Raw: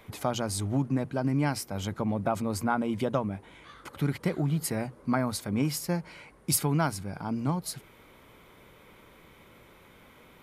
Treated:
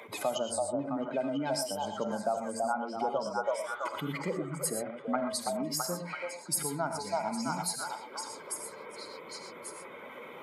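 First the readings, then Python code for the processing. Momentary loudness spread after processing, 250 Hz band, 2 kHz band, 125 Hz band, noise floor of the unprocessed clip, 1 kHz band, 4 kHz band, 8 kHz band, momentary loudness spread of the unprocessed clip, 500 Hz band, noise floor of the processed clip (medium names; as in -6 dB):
11 LU, -7.0 dB, -1.5 dB, -14.0 dB, -56 dBFS, +1.0 dB, 0.0 dB, 0.0 dB, 9 LU, +1.0 dB, -47 dBFS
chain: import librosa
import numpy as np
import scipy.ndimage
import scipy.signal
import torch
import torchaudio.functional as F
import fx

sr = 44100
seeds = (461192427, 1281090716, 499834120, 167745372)

y = fx.spec_expand(x, sr, power=1.9)
y = scipy.signal.sosfilt(scipy.signal.butter(2, 410.0, 'highpass', fs=sr, output='sos'), y)
y = fx.peak_eq(y, sr, hz=7800.0, db=5.5, octaves=0.7)
y = fx.echo_stepped(y, sr, ms=331, hz=700.0, octaves=0.7, feedback_pct=70, wet_db=-0.5)
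y = fx.rider(y, sr, range_db=4, speed_s=0.5)
y = fx.rev_gated(y, sr, seeds[0], gate_ms=140, shape='rising', drr_db=5.5)
y = fx.band_squash(y, sr, depth_pct=40)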